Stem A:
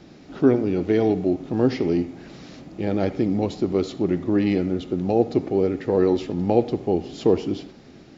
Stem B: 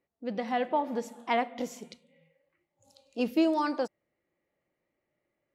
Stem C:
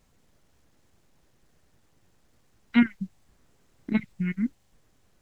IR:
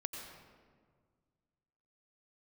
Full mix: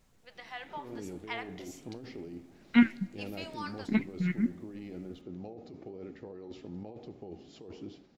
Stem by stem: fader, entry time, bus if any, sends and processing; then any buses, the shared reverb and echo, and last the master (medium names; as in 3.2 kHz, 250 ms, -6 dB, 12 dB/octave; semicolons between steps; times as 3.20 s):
-15.5 dB, 0.35 s, no send, compressor with a negative ratio -23 dBFS, ratio -1
+0.5 dB, 0.00 s, no send, high-pass 1.4 kHz 12 dB/octave
+2.0 dB, 0.00 s, send -20.5 dB, none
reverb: on, RT60 1.8 s, pre-delay 82 ms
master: flange 0.99 Hz, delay 4.9 ms, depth 9.9 ms, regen -85%